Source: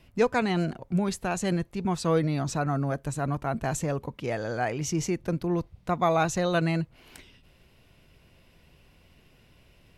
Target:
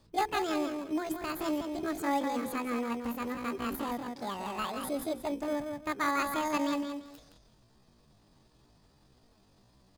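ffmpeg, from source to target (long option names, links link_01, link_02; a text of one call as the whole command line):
ffmpeg -i in.wav -filter_complex "[0:a]bandreject=frequency=50:width_type=h:width=6,bandreject=frequency=100:width_type=h:width=6,bandreject=frequency=150:width_type=h:width=6,bandreject=frequency=200:width_type=h:width=6,bandreject=frequency=250:width_type=h:width=6,bandreject=frequency=300:width_type=h:width=6,asplit=2[link_01][link_02];[link_02]adelay=175,lowpass=frequency=3800:poles=1,volume=-5.5dB,asplit=2[link_03][link_04];[link_04]adelay=175,lowpass=frequency=3800:poles=1,volume=0.23,asplit=2[link_05][link_06];[link_06]adelay=175,lowpass=frequency=3800:poles=1,volume=0.23[link_07];[link_01][link_03][link_05][link_07]amix=inputs=4:normalize=0,asplit=2[link_08][link_09];[link_09]acrusher=samples=27:mix=1:aa=0.000001,volume=-7dB[link_10];[link_08][link_10]amix=inputs=2:normalize=0,asetrate=76340,aresample=44100,atempo=0.577676,volume=-8.5dB" out.wav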